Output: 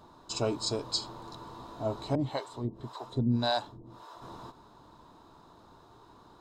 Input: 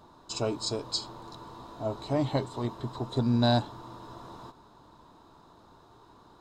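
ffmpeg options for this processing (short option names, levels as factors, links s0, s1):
-filter_complex "[0:a]asettb=1/sr,asplit=3[s0][s1][s2];[s0]atrim=end=2.154[s3];[s1]atrim=start=2.15:end=4.22,asetpts=PTS-STARTPTS,afade=t=in:d=0.004:c=qsin,afade=t=out:st=2.066:d=0.004:c=qsin,acrossover=split=470[s4][s5];[s4]aeval=exprs='val(0)*(1-1/2+1/2*cos(2*PI*1.8*n/s))':c=same[s6];[s5]aeval=exprs='val(0)*(1-1/2-1/2*cos(2*PI*1.8*n/s))':c=same[s7];[s6][s7]amix=inputs=2:normalize=0[s8];[s2]atrim=start=4.216[s9];[s3][s8]acrossfade=d=0.004:c1=hsin:c2=qsin[s10];[s10][s9]acrossfade=d=0.004:c1=qsin:c2=hsin"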